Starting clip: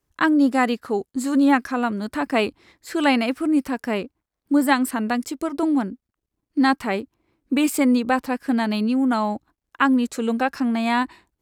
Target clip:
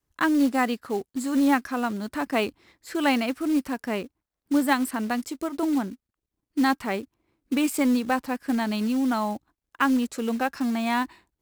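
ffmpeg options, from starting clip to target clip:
ffmpeg -i in.wav -af "adynamicequalizer=threshold=0.0126:dfrequency=460:dqfactor=5.3:tfrequency=460:tqfactor=5.3:attack=5:release=100:ratio=0.375:range=1.5:mode=cutabove:tftype=bell,acrusher=bits=5:mode=log:mix=0:aa=0.000001,volume=-4dB" out.wav

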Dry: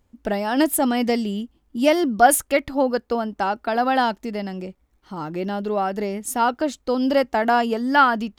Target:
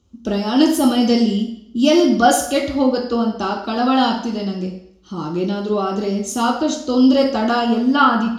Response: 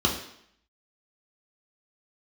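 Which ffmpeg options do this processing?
-filter_complex "[0:a]asetnsamples=nb_out_samples=441:pad=0,asendcmd='7.59 equalizer g 5.5',equalizer=frequency=6000:width=1:gain=13.5[link_01];[1:a]atrim=start_sample=2205[link_02];[link_01][link_02]afir=irnorm=-1:irlink=0,volume=-12.5dB"

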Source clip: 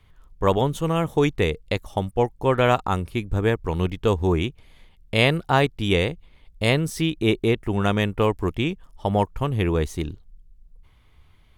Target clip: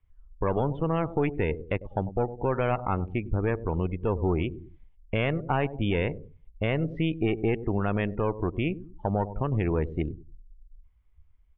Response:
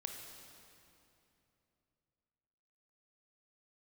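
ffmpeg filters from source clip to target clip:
-filter_complex "[0:a]aeval=exprs='(tanh(3.55*val(0)+0.55)-tanh(0.55))/3.55':channel_layout=same,lowpass=frequency=2800:width=0.5412,lowpass=frequency=2800:width=1.3066,asplit=2[link_01][link_02];[link_02]adelay=99,lowpass=frequency=900:poles=1,volume=-15dB,asplit=2[link_03][link_04];[link_04]adelay=99,lowpass=frequency=900:poles=1,volume=0.45,asplit=2[link_05][link_06];[link_06]adelay=99,lowpass=frequency=900:poles=1,volume=0.45,asplit=2[link_07][link_08];[link_08]adelay=99,lowpass=frequency=900:poles=1,volume=0.45[link_09];[link_03][link_05][link_07][link_09]amix=inputs=4:normalize=0[link_10];[link_01][link_10]amix=inputs=2:normalize=0,alimiter=limit=-16dB:level=0:latency=1:release=172,afftdn=noise_reduction=20:noise_floor=-40,volume=1.5dB"

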